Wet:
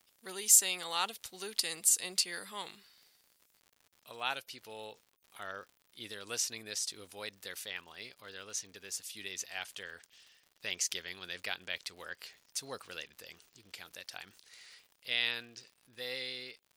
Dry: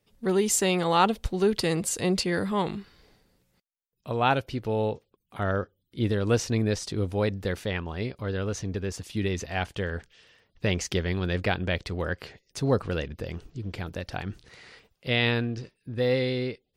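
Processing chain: differentiator; crackle 120/s -52 dBFS; gain +3 dB

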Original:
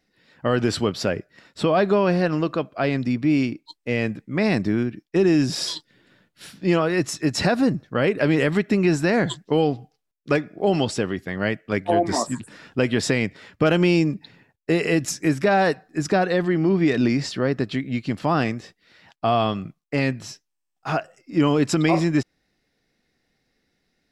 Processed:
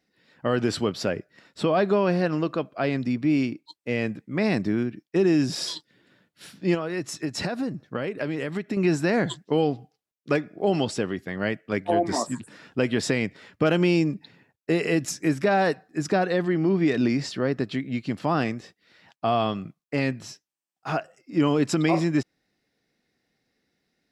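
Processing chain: HPF 140 Hz 6 dB/oct; low shelf 400 Hz +3 dB; 6.74–8.77 compressor, threshold -22 dBFS, peak gain reduction 8 dB; gain -3.5 dB

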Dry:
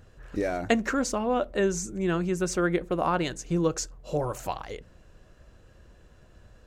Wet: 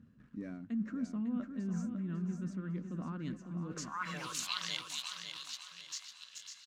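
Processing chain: high shelf 2800 Hz +9 dB; delay with a stepping band-pass 0.429 s, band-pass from 780 Hz, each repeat 0.7 oct, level -9 dB; in parallel at -3.5 dB: bit-crush 7-bit; on the sum: band-pass sweep 230 Hz -> 3900 Hz, 3.63–4.32; reverse; compressor 8:1, threshold -40 dBFS, peak gain reduction 21 dB; reverse; HPF 110 Hz 6 dB/oct; band shelf 530 Hz -14 dB; feedback echo 0.551 s, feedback 36%, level -7 dB; gain +7.5 dB

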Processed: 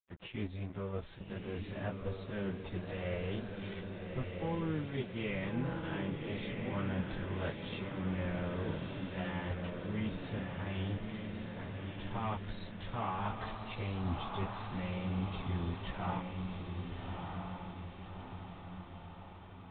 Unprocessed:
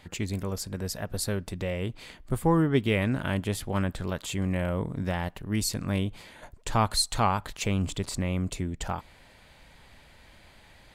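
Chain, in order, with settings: gate -46 dBFS, range -16 dB; reverse; compressor 5:1, threshold -34 dBFS, peak gain reduction 15 dB; reverse; plain phase-vocoder stretch 1.8×; crossover distortion -52.5 dBFS; on a send: diffused feedback echo 1.252 s, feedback 57%, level -3.5 dB; on the sum: downsampling 8000 Hz; gain +2.5 dB

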